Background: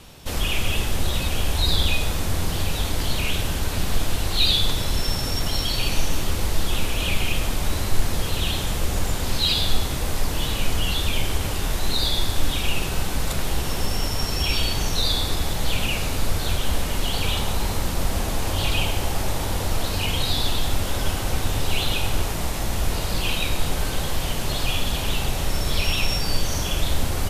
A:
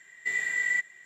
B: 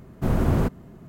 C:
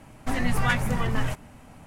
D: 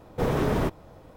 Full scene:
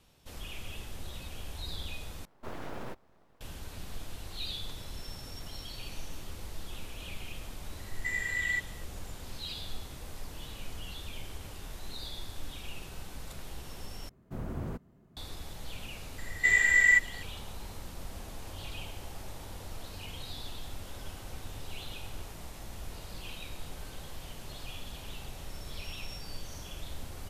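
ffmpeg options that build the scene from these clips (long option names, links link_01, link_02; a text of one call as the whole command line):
ffmpeg -i bed.wav -i cue0.wav -i cue1.wav -i cue2.wav -i cue3.wav -filter_complex "[1:a]asplit=2[link_01][link_02];[0:a]volume=-19dB[link_03];[4:a]aeval=exprs='abs(val(0))':channel_layout=same[link_04];[link_02]acontrast=82[link_05];[link_03]asplit=3[link_06][link_07][link_08];[link_06]atrim=end=2.254[link_09];[link_04]atrim=end=1.16,asetpts=PTS-STARTPTS,volume=-13.5dB[link_10];[link_07]atrim=start=3.406:end=14.094[link_11];[2:a]atrim=end=1.08,asetpts=PTS-STARTPTS,volume=-16dB[link_12];[link_08]atrim=start=15.166[link_13];[link_01]atrim=end=1.05,asetpts=PTS-STARTPTS,volume=-4.5dB,afade=type=in:duration=0.004:curve=hsin,afade=type=out:start_time=1.046:duration=0.004:curve=hsin,adelay=7790[link_14];[link_05]atrim=end=1.05,asetpts=PTS-STARTPTS,volume=-1.5dB,afade=type=in:duration=0.004:curve=hsin,afade=type=out:start_time=1.046:duration=0.004:curve=hsin,adelay=16180[link_15];[link_09][link_10]acrossfade=duration=0.004:curve1=hsin:curve2=hsin[link_16];[link_16][link_11]acrossfade=duration=0.004:curve1=hsin:curve2=hsin[link_17];[link_17][link_12]acrossfade=duration=0.004:curve1=hsin:curve2=hsin[link_18];[link_18][link_13]acrossfade=duration=0.004:curve1=hsin:curve2=hsin[link_19];[link_19][link_14][link_15]amix=inputs=3:normalize=0" out.wav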